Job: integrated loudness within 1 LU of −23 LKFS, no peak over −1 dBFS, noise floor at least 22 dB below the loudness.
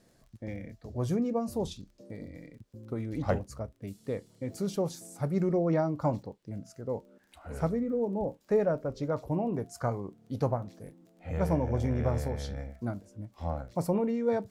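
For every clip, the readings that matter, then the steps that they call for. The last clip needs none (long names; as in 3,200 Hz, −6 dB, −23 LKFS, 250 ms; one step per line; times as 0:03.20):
crackle rate 26 per second; integrated loudness −32.5 LKFS; sample peak −15.0 dBFS; target loudness −23.0 LKFS
→ click removal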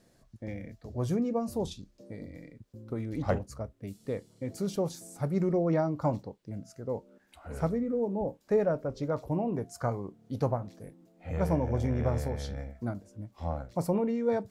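crackle rate 0.069 per second; integrated loudness −32.5 LKFS; sample peak −15.0 dBFS; target loudness −23.0 LKFS
→ level +9.5 dB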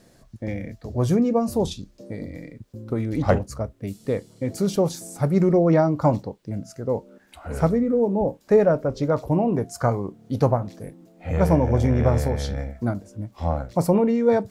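integrated loudness −23.0 LKFS; sample peak −5.5 dBFS; background noise floor −56 dBFS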